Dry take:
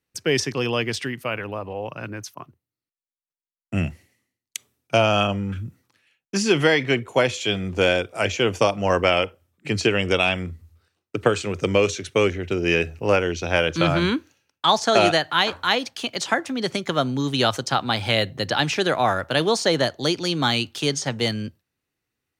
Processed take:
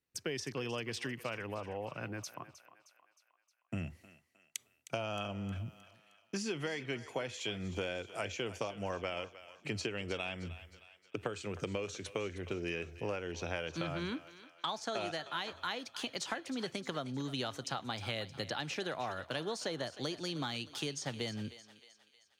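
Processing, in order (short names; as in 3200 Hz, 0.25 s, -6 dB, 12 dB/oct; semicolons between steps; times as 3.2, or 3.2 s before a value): compressor, threshold -27 dBFS, peak gain reduction 14 dB; thinning echo 0.311 s, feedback 53%, high-pass 610 Hz, level -13.5 dB; gain -8 dB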